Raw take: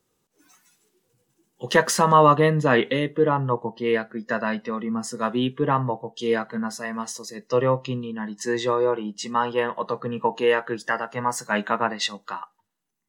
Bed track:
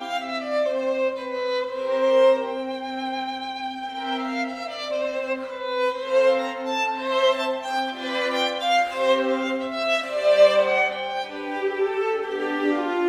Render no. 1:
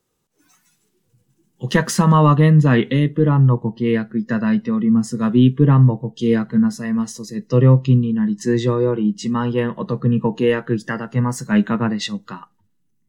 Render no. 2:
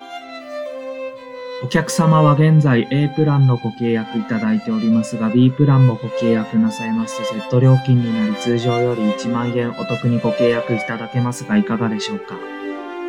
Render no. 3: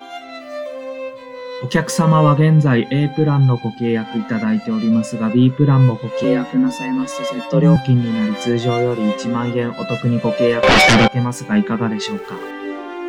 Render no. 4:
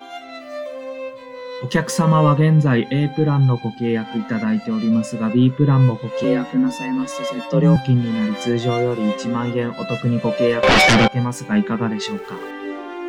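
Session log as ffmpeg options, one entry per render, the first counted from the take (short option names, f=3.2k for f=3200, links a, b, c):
-af "asubboost=boost=11:cutoff=220"
-filter_complex "[1:a]volume=-4.5dB[a];[0:a][a]amix=inputs=2:normalize=0"
-filter_complex "[0:a]asettb=1/sr,asplit=3[a][b][c];[a]atrim=end=6.244[d];[b]atrim=start=6.24:end=7.76,asetpts=PTS-STARTPTS,afade=t=in:d=0.004:c=qsin,afade=t=out:st=1.516:d=0.004:c=qsin,afreqshift=35[e];[c]atrim=start=7.756[f];[d][e]acrossfade=d=0.004:c1=hsin:c2=qsin[g];[g][f]acrossfade=d=0.004:c1=qsin:c2=hsin,asettb=1/sr,asplit=3[h][i][j];[h]atrim=end=10.634[k];[i]atrim=start=10.63:end=11.08,asetpts=PTS-STARTPTS,afade=t=in:d=0.004:c=qsin,afade=t=out:st=0.446:d=0.004:c=qsin,aeval=exprs='0.473*sin(PI/2*6.31*val(0)/0.473)':c=same[l];[j]atrim=start=11.076[m];[k][l]acrossfade=d=0.004:c1=hsin:c2=qsin[n];[n][m]acrossfade=d=0.004:c1=qsin:c2=hsin,asettb=1/sr,asplit=3[o][p][q];[o]atrim=end=12.074[r];[p]atrim=start=12.07:end=12.51,asetpts=PTS-STARTPTS,afade=t=in:d=0.004:c=qsin,afade=t=out:st=0.436:d=0.004:c=qsin,aeval=exprs='val(0)+0.5*0.0112*sgn(val(0))':c=same[s];[q]atrim=start=12.506[t];[r][s]acrossfade=d=0.004:c1=hsin:c2=qsin[u];[u][t]acrossfade=d=0.004:c1=qsin:c2=hsin"
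-af "volume=-2dB"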